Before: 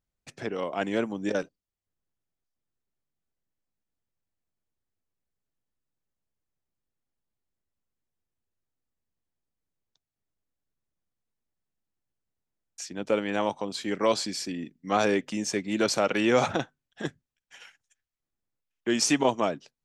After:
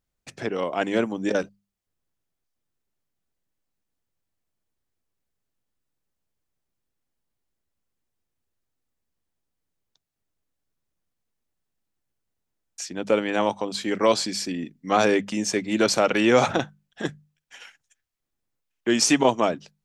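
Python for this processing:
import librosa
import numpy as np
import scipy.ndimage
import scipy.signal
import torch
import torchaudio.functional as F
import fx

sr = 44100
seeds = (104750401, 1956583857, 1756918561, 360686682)

y = fx.hum_notches(x, sr, base_hz=50, count=4)
y = y * 10.0 ** (4.5 / 20.0)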